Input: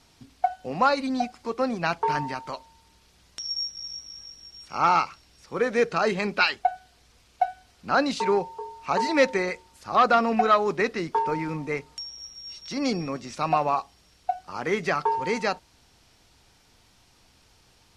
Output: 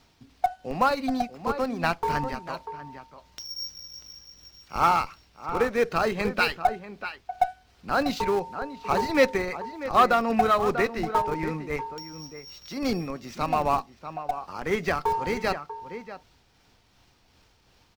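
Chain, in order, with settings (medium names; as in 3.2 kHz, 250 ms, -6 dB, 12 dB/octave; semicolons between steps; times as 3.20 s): median filter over 5 samples; echo from a far wall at 110 m, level -10 dB; in parallel at -7.5 dB: Schmitt trigger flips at -20.5 dBFS; on the sum: tremolo 2.7 Hz, depth 34%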